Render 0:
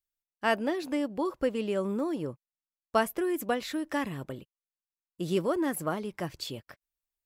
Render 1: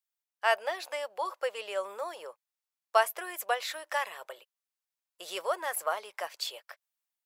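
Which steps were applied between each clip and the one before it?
level rider gain up to 3 dB; inverse Chebyshev high-pass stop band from 290 Hz, stop band 40 dB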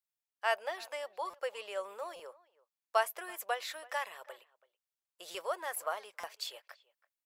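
speakerphone echo 330 ms, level -22 dB; buffer glitch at 1.30/2.16/5.31/6.20 s, samples 256, times 5; trim -5 dB

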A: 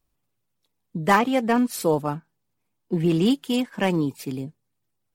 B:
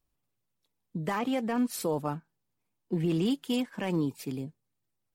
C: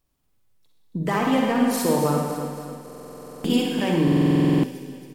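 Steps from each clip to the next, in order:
peak limiter -15 dBFS, peak gain reduction 11 dB; trim -5 dB
feedback delay 275 ms, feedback 54%, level -10.5 dB; reverberation RT60 1.5 s, pre-delay 42 ms, DRR -0.5 dB; buffer glitch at 2.84/4.03 s, samples 2048, times 12; trim +6 dB

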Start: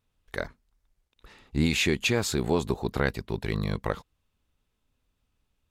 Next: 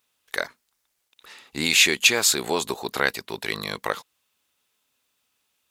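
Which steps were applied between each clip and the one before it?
high-pass 400 Hz 6 dB/octave; tilt EQ +2.5 dB/octave; trim +6 dB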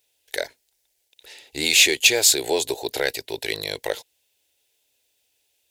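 in parallel at -3.5 dB: overload inside the chain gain 14 dB; on the sum: static phaser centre 490 Hz, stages 4

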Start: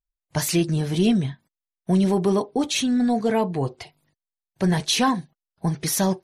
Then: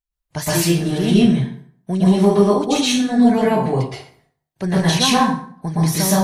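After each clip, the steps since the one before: plate-style reverb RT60 0.57 s, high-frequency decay 0.7×, pre-delay 105 ms, DRR -8 dB; trim -2 dB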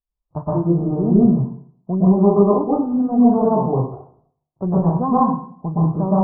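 steep low-pass 1.2 kHz 72 dB/octave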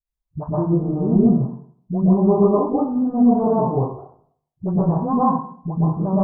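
phase dispersion highs, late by 67 ms, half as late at 370 Hz; trim -1.5 dB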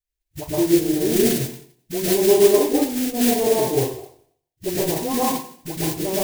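modulation noise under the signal 13 dB; FFT filter 110 Hz 0 dB, 190 Hz -15 dB, 330 Hz +6 dB, 1.2 kHz -9 dB, 1.7 kHz +2 dB

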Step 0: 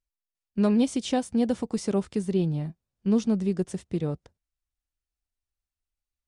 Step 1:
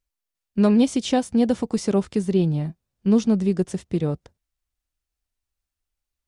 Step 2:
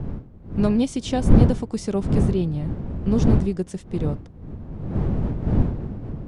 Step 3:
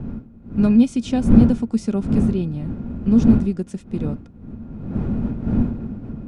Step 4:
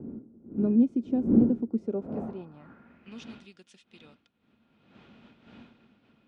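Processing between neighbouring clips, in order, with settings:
dynamic bell 8.7 kHz, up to -4 dB, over -60 dBFS, Q 5.5; trim +5 dB
wind noise 160 Hz -19 dBFS; trim -3.5 dB
small resonant body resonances 230/1400/2500 Hz, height 12 dB, ringing for 60 ms; trim -3 dB
band-pass sweep 350 Hz -> 3.3 kHz, 1.75–3.28 s; trim -1 dB

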